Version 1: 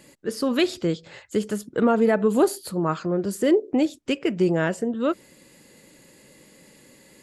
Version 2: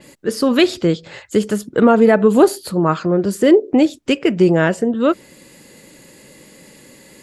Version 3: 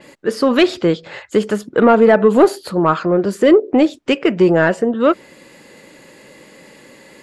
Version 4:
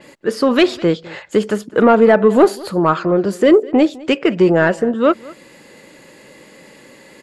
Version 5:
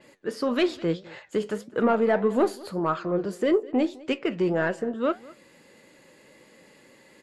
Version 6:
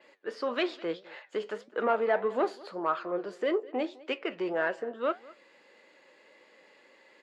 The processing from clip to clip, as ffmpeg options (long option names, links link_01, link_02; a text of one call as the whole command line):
ffmpeg -i in.wav -af "adynamicequalizer=threshold=0.00398:dfrequency=5700:dqfactor=0.7:tfrequency=5700:tqfactor=0.7:attack=5:release=100:ratio=0.375:range=2.5:mode=cutabove:tftype=highshelf,volume=8dB" out.wav
ffmpeg -i in.wav -filter_complex "[0:a]asplit=2[link_01][link_02];[link_02]highpass=frequency=720:poles=1,volume=11dB,asoftclip=type=tanh:threshold=-1dB[link_03];[link_01][link_03]amix=inputs=2:normalize=0,lowpass=frequency=1700:poles=1,volume=-6dB,volume=1dB" out.wav
ffmpeg -i in.wav -af "aecho=1:1:206:0.0794" out.wav
ffmpeg -i in.wav -af "flanger=delay=7.8:depth=4.4:regen=76:speed=1.7:shape=sinusoidal,volume=-7dB" out.wav
ffmpeg -i in.wav -af "highpass=470,lowpass=4100,volume=-2dB" out.wav